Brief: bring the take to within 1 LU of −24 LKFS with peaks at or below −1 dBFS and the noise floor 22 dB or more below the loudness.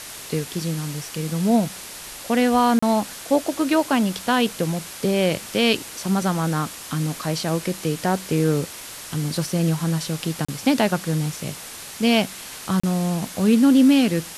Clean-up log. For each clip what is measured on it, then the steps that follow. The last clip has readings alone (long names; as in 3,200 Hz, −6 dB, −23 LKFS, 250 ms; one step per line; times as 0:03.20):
number of dropouts 3; longest dropout 35 ms; background noise floor −37 dBFS; target noise floor −44 dBFS; integrated loudness −22.0 LKFS; sample peak −5.5 dBFS; target loudness −24.0 LKFS
→ repair the gap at 0:02.79/0:10.45/0:12.80, 35 ms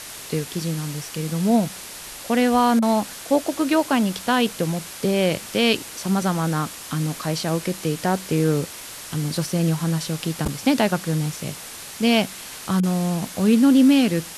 number of dropouts 0; background noise floor −37 dBFS; target noise floor −44 dBFS
→ broadband denoise 7 dB, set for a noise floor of −37 dBFS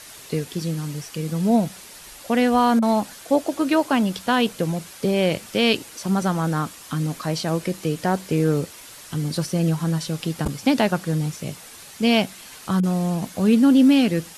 background noise floor −43 dBFS; target noise floor −44 dBFS
→ broadband denoise 6 dB, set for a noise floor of −43 dBFS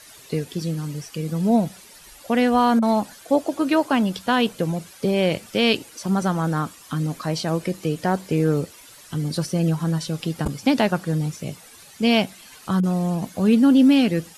background noise floor −47 dBFS; integrated loudness −22.0 LKFS; sample peak −5.5 dBFS; target loudness −24.0 LKFS
→ level −2 dB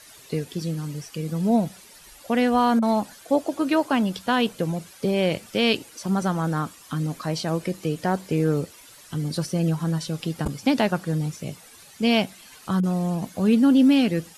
integrated loudness −24.0 LKFS; sample peak −7.5 dBFS; background noise floor −49 dBFS